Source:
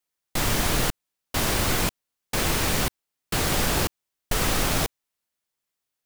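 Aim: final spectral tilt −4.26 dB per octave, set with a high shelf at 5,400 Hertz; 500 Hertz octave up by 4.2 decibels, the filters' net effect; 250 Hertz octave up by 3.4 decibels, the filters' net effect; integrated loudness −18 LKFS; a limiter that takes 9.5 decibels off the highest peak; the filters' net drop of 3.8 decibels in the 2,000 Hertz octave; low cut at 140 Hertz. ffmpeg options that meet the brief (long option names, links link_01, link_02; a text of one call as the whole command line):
ffmpeg -i in.wav -af "highpass=140,equalizer=frequency=250:width_type=o:gain=4,equalizer=frequency=500:width_type=o:gain=4.5,equalizer=frequency=2000:width_type=o:gain=-4,highshelf=frequency=5400:gain=-8.5,volume=14.5dB,alimiter=limit=-7.5dB:level=0:latency=1" out.wav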